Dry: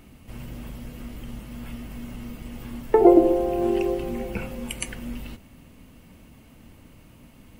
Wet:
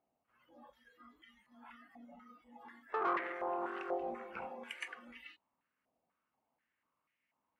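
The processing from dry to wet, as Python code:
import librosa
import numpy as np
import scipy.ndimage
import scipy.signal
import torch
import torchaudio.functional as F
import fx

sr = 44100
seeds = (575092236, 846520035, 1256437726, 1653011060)

y = fx.noise_reduce_blind(x, sr, reduce_db=21)
y = fx.tube_stage(y, sr, drive_db=22.0, bias=0.25)
y = fx.filter_held_bandpass(y, sr, hz=4.1, low_hz=720.0, high_hz=2000.0)
y = y * 10.0 ** (4.0 / 20.0)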